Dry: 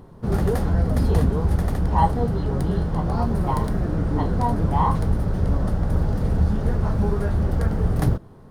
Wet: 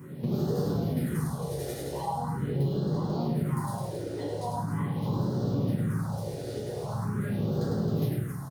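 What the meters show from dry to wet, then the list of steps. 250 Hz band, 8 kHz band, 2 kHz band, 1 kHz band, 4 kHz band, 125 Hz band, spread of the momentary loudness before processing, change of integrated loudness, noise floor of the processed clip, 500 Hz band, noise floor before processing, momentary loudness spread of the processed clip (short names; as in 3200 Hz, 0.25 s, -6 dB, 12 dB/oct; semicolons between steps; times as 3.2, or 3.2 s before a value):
-5.5 dB, n/a, -8.0 dB, -10.5 dB, -2.0 dB, -8.0 dB, 4 LU, -8.0 dB, -37 dBFS, -5.0 dB, -44 dBFS, 6 LU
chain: HPF 130 Hz 24 dB/oct; two-slope reverb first 0.46 s, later 1.8 s, DRR -8.5 dB; compressor 6:1, threshold -26 dBFS, peak gain reduction 17.5 dB; high shelf 4800 Hz +6 dB; on a send: loudspeakers at several distances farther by 35 m -5 dB, 92 m -8 dB; on the sum: phaser stages 4, 0.42 Hz, lowest notch 180–2200 Hz; gain -2 dB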